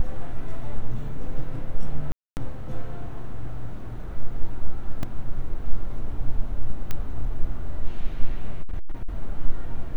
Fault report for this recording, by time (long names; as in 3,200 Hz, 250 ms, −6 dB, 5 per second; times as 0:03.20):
0:02.12–0:02.37: drop-out 249 ms
0:05.03: drop-out 2.2 ms
0:06.91: click −12 dBFS
0:08.62–0:09.08: clipping −19.5 dBFS